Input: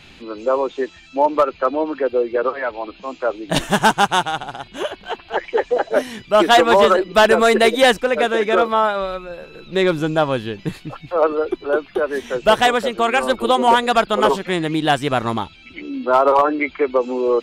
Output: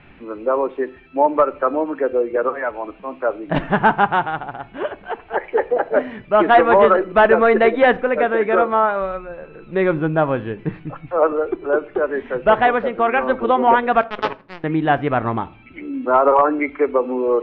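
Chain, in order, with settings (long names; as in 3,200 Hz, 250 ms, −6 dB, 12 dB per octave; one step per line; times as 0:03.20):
low-pass filter 2,200 Hz 24 dB per octave
0:14.01–0:14.64: power curve on the samples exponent 3
convolution reverb RT60 0.50 s, pre-delay 7 ms, DRR 16 dB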